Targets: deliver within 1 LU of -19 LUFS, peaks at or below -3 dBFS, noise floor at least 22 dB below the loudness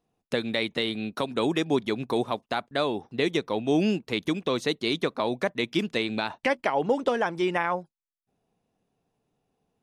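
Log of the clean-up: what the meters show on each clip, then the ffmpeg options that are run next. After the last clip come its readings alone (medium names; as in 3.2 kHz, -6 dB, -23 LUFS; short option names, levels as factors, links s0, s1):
loudness -27.5 LUFS; peak level -12.5 dBFS; loudness target -19.0 LUFS
-> -af "volume=2.66"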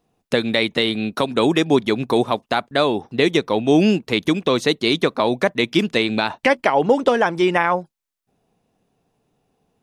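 loudness -19.0 LUFS; peak level -4.0 dBFS; noise floor -76 dBFS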